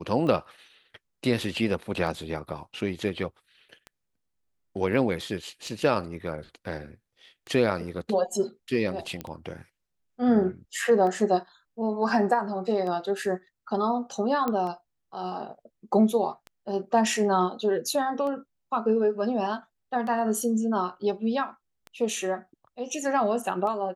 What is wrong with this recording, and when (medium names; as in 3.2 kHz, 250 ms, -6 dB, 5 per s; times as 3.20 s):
tick 33 1/3 rpm -25 dBFS
9.21 s: pop -19 dBFS
14.48 s: pop -15 dBFS